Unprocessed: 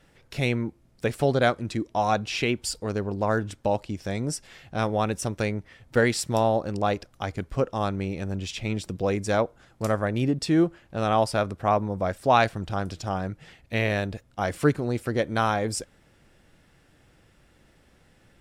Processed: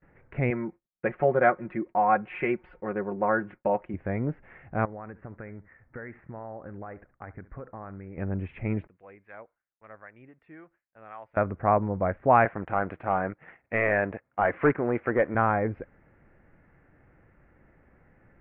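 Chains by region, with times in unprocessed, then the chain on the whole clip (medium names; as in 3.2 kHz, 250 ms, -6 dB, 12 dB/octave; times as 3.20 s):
0.50–3.94 s: comb 5.5 ms, depth 68% + expander -46 dBFS + bass shelf 210 Hz -12 dB
4.85–8.18 s: four-pole ladder low-pass 2.2 kHz, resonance 40% + compression 10:1, threshold -35 dBFS + delay 70 ms -18 dB
8.87–11.37 s: pre-emphasis filter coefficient 0.97 + harmonic tremolo 3.7 Hz, depth 50%, crossover 730 Hz
12.45–15.35 s: high-pass 570 Hz 6 dB/octave + waveshaping leveller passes 2
whole clip: gate with hold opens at -51 dBFS; steep low-pass 2.2 kHz 48 dB/octave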